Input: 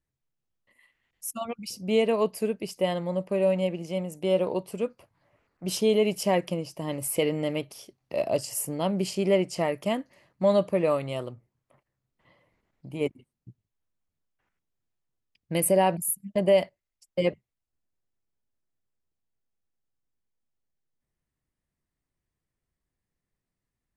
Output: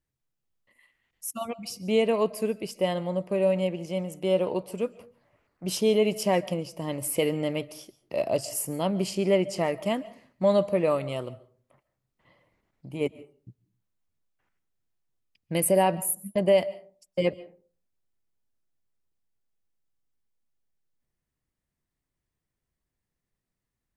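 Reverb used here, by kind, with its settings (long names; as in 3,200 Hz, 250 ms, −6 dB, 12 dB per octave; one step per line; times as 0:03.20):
comb and all-pass reverb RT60 0.42 s, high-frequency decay 0.45×, pre-delay 100 ms, DRR 19 dB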